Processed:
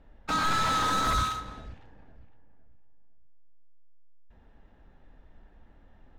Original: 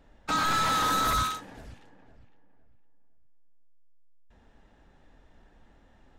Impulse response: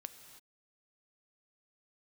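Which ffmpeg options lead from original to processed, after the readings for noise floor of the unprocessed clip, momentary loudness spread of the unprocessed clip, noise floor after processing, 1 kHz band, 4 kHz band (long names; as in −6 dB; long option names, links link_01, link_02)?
−60 dBFS, 7 LU, −58 dBFS, −0.5 dB, −1.0 dB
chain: -filter_complex "[0:a]asplit=2[link_01][link_02];[link_02]lowshelf=frequency=110:gain=9[link_03];[1:a]atrim=start_sample=2205[link_04];[link_03][link_04]afir=irnorm=-1:irlink=0,volume=6dB[link_05];[link_01][link_05]amix=inputs=2:normalize=0,adynamicsmooth=sensitivity=6.5:basefreq=4200,volume=-7.5dB"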